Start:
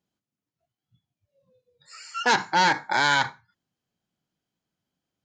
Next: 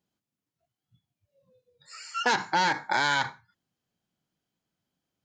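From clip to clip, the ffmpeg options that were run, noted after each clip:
-af "acompressor=threshold=0.0891:ratio=6"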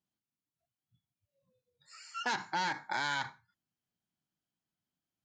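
-af "equalizer=f=480:t=o:w=0.53:g=-6,volume=0.376"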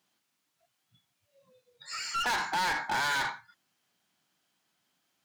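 -filter_complex "[0:a]asplit=2[s0][s1];[s1]highpass=f=720:p=1,volume=22.4,asoftclip=type=tanh:threshold=0.0891[s2];[s0][s2]amix=inputs=2:normalize=0,lowpass=f=6000:p=1,volume=0.501,volume=0.794"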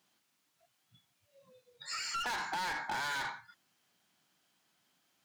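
-af "acompressor=threshold=0.0126:ratio=4,volume=1.19"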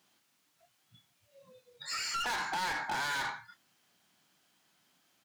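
-filter_complex "[0:a]asoftclip=type=tanh:threshold=0.0237,asplit=2[s0][s1];[s1]adelay=27,volume=0.251[s2];[s0][s2]amix=inputs=2:normalize=0,volume=1.5"

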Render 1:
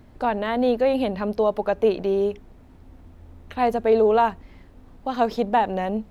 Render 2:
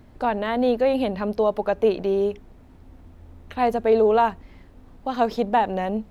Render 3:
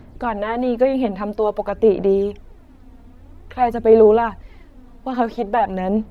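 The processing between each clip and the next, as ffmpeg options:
-af anull
-filter_complex "[0:a]aphaser=in_gain=1:out_gain=1:delay=4.3:decay=0.5:speed=0.5:type=sinusoidal,acrossover=split=2600[s0][s1];[s1]acompressor=threshold=0.00355:ratio=4:attack=1:release=60[s2];[s0][s2]amix=inputs=2:normalize=0,volume=1.19"

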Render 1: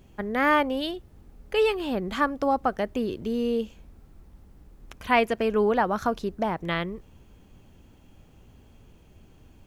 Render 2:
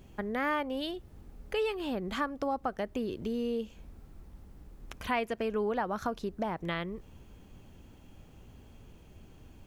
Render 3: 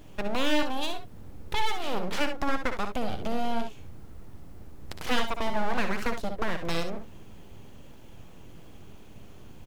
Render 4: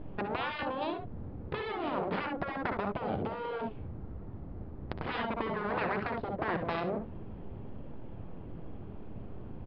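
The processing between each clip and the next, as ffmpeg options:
-af "acompressor=threshold=0.0178:ratio=2"
-af "aeval=exprs='abs(val(0))':c=same,aecho=1:1:60|70:0.335|0.282,volume=2"
-af "afftfilt=real='re*lt(hypot(re,im),0.126)':imag='im*lt(hypot(re,im),0.126)':win_size=1024:overlap=0.75,adynamicsmooth=sensitivity=0.5:basefreq=1200,aresample=11025,aresample=44100,volume=2"

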